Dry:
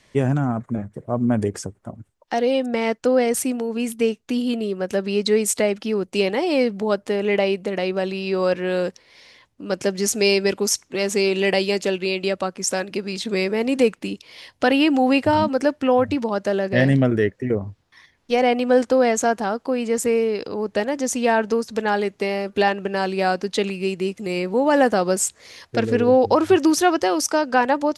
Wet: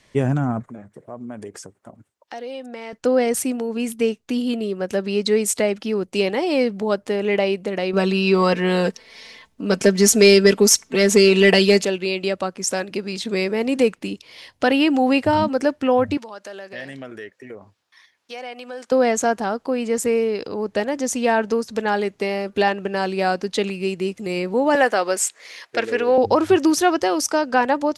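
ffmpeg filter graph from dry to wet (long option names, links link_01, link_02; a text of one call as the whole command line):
ffmpeg -i in.wav -filter_complex "[0:a]asettb=1/sr,asplit=3[link_01][link_02][link_03];[link_01]atrim=end=0.684[link_04];[link_02]atrim=start=0.68:end=2.93,asetpts=PTS-STARTPTS,afade=type=in:duration=0.004:curve=qsin,afade=type=out:start_time=2.246:duration=0.004:curve=qsin,highpass=frequency=380:poles=1,acompressor=threshold=-37dB:ratio=2:attack=3.2:release=140:knee=1:detection=peak[link_05];[link_03]atrim=start=2.926[link_06];[link_04][link_05]acrossfade=duration=0.004:curve1=hsin:curve2=qsin[link_07];[link_07][link_06]acrossfade=duration=0.004:curve1=qsin:curve2=hsin,asettb=1/sr,asplit=3[link_08][link_09][link_10];[link_08]atrim=end=7.934[link_11];[link_09]atrim=start=7.93:end=11.85,asetpts=PTS-STARTPTS,afade=type=in:duration=0.004:curve=qsin,afade=type=out:start_time=3.916:duration=0.004:curve=qsin,aecho=1:1:4.5:0.61,atrim=end_sample=172872,acontrast=40[link_12];[link_10]atrim=start=11.846[link_13];[link_11][link_12]acrossfade=duration=0.004:curve1=hsin:curve2=qsin[link_14];[link_14][link_13]acrossfade=duration=0.004:curve1=qsin:curve2=hsin,asettb=1/sr,asplit=3[link_15][link_16][link_17];[link_15]atrim=end=16.174[link_18];[link_16]atrim=start=16.17:end=18.92,asetpts=PTS-STARTPTS,afade=type=in:duration=0.004:curve=qsin,afade=type=out:start_time=2.746:duration=0.004:curve=qsin,highpass=frequency=1200:poles=1,bandreject=frequency=2000:width=26,acompressor=threshold=-36dB:ratio=2:attack=3.2:release=140:knee=1:detection=peak[link_19];[link_17]atrim=start=18.916[link_20];[link_18][link_19]acrossfade=duration=0.004:curve1=hsin:curve2=qsin[link_21];[link_21][link_20]acrossfade=duration=0.004:curve1=qsin:curve2=hsin,asettb=1/sr,asplit=3[link_22][link_23][link_24];[link_22]atrim=end=24.754[link_25];[link_23]atrim=start=24.75:end=26.18,asetpts=PTS-STARTPTS,afade=type=in:duration=0.004:curve=qsin,afade=type=out:start_time=1.426:duration=0.004:curve=qsin,highpass=400,equalizer=frequency=2100:width_type=o:width=1.3:gain=6[link_26];[link_24]atrim=start=26.176[link_27];[link_25][link_26]acrossfade=duration=0.004:curve1=hsin:curve2=qsin[link_28];[link_28][link_27]acrossfade=duration=0.004:curve1=qsin:curve2=hsin" out.wav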